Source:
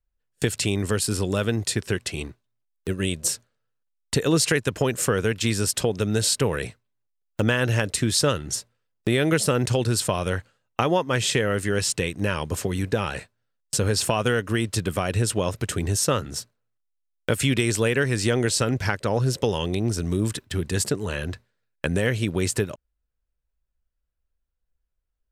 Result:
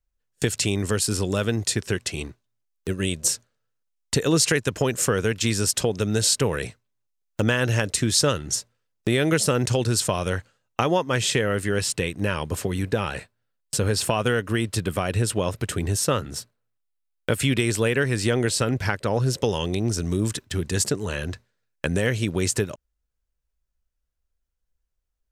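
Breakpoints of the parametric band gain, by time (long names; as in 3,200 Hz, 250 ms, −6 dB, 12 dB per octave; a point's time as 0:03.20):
parametric band 6,300 Hz 0.66 octaves
0:10.98 +4 dB
0:11.60 −2.5 dB
0:19.02 −2.5 dB
0:19.55 +4.5 dB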